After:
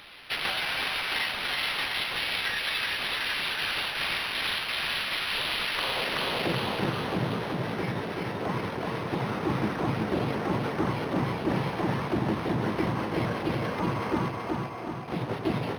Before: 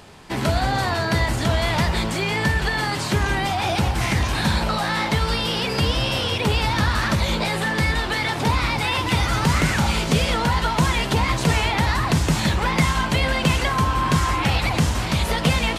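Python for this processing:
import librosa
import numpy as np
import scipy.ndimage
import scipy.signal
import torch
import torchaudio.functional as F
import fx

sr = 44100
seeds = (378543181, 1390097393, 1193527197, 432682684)

y = np.abs(x)
y = scipy.signal.sosfilt(scipy.signal.butter(2, 92.0, 'highpass', fs=sr, output='sos'), y)
y = fx.peak_eq(y, sr, hz=250.0, db=-7.5, octaves=0.92)
y = fx.vowel_filter(y, sr, vowel='a', at=(14.28, 15.08))
y = fx.high_shelf(y, sr, hz=2200.0, db=10.5)
y = y + 10.0 ** (-12.5 / 20.0) * np.pad(y, (int(703 * sr / 1000.0), 0))[:len(y)]
y = fx.filter_sweep_bandpass(y, sr, from_hz=3100.0, to_hz=230.0, start_s=5.62, end_s=6.18, q=1.1)
y = fx.echo_feedback(y, sr, ms=377, feedback_pct=52, wet_db=-3.5)
y = fx.rider(y, sr, range_db=4, speed_s=0.5)
y = np.interp(np.arange(len(y)), np.arange(len(y))[::6], y[::6])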